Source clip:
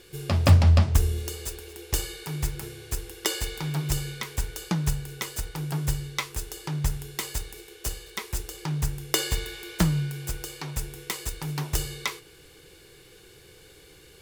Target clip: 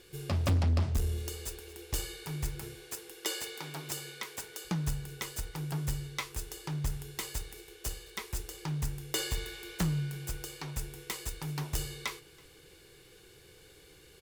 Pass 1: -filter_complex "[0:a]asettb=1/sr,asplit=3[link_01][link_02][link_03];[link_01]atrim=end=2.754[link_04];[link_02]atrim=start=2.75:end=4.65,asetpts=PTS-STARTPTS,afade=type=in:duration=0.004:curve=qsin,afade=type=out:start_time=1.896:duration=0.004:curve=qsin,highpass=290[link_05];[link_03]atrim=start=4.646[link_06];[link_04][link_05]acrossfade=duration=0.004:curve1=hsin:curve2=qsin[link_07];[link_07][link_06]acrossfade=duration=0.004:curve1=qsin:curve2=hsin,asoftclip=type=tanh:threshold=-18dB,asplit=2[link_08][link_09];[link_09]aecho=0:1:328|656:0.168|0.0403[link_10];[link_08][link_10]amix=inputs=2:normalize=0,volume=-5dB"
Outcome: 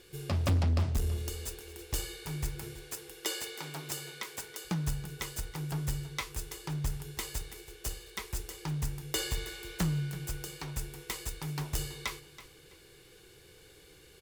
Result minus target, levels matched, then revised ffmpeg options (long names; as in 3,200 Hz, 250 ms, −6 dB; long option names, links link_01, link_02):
echo-to-direct +11 dB
-filter_complex "[0:a]asettb=1/sr,asplit=3[link_01][link_02][link_03];[link_01]atrim=end=2.754[link_04];[link_02]atrim=start=2.75:end=4.65,asetpts=PTS-STARTPTS,afade=type=in:duration=0.004:curve=qsin,afade=type=out:start_time=1.896:duration=0.004:curve=qsin,highpass=290[link_05];[link_03]atrim=start=4.646[link_06];[link_04][link_05]acrossfade=duration=0.004:curve1=hsin:curve2=qsin[link_07];[link_07][link_06]acrossfade=duration=0.004:curve1=qsin:curve2=hsin,asoftclip=type=tanh:threshold=-18dB,asplit=2[link_08][link_09];[link_09]aecho=0:1:328|656:0.0473|0.0114[link_10];[link_08][link_10]amix=inputs=2:normalize=0,volume=-5dB"